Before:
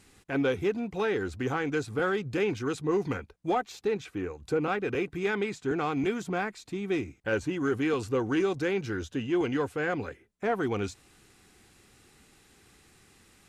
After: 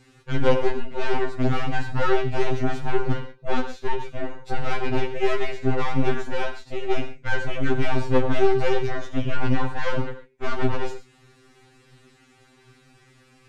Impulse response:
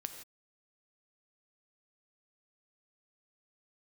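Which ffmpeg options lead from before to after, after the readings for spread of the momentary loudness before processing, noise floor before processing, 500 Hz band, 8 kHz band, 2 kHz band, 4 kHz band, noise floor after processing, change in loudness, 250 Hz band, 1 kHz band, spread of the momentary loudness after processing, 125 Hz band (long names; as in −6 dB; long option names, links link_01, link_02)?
6 LU, −62 dBFS, +3.5 dB, can't be measured, +3.0 dB, +6.0 dB, −57 dBFS, +3.5 dB, +1.5 dB, +5.5 dB, 9 LU, +8.5 dB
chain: -filter_complex "[0:a]aeval=exprs='0.133*(cos(1*acos(clip(val(0)/0.133,-1,1)))-cos(1*PI/2))+0.0422*(cos(4*acos(clip(val(0)/0.133,-1,1)))-cos(4*PI/2))+0.0133*(cos(8*acos(clip(val(0)/0.133,-1,1)))-cos(8*PI/2))':channel_layout=same,asplit=2[link_01][link_02];[link_02]acompressor=threshold=-39dB:ratio=6,volume=-2dB[link_03];[link_01][link_03]amix=inputs=2:normalize=0,aemphasis=mode=reproduction:type=50fm[link_04];[1:a]atrim=start_sample=2205,afade=type=out:start_time=0.26:duration=0.01,atrim=end_sample=11907,atrim=end_sample=6174[link_05];[link_04][link_05]afir=irnorm=-1:irlink=0,afftfilt=real='re*2.45*eq(mod(b,6),0)':imag='im*2.45*eq(mod(b,6),0)':win_size=2048:overlap=0.75,volume=4.5dB"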